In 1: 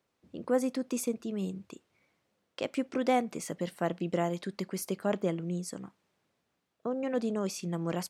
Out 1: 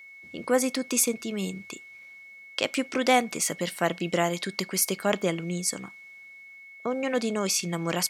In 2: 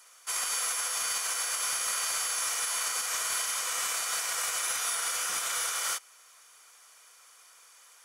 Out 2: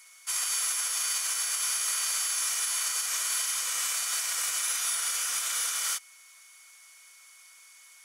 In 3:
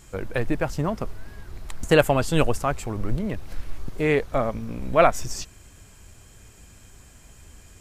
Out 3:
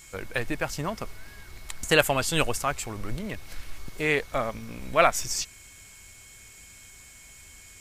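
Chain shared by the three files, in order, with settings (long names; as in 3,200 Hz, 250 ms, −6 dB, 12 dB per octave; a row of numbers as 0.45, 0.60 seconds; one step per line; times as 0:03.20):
steady tone 2,200 Hz −57 dBFS
tilt shelving filter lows −6.5 dB, about 1,200 Hz
loudness normalisation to −27 LKFS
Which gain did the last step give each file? +8.5, −4.0, −1.0 decibels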